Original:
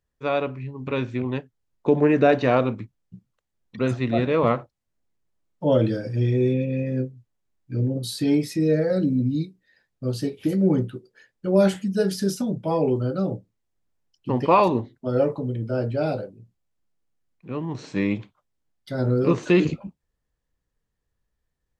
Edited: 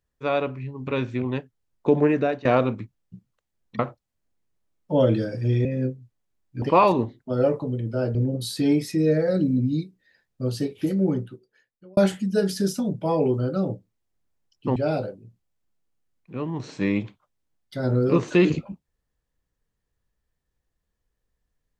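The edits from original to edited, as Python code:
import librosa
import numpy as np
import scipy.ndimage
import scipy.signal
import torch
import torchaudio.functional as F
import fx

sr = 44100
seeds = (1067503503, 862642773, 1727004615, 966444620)

y = fx.edit(x, sr, fx.fade_out_to(start_s=2.0, length_s=0.45, floor_db=-19.0),
    fx.cut(start_s=3.79, length_s=0.72),
    fx.cut(start_s=6.37, length_s=0.43),
    fx.fade_out_span(start_s=10.33, length_s=1.26),
    fx.move(start_s=14.38, length_s=1.53, to_s=7.77), tone=tone)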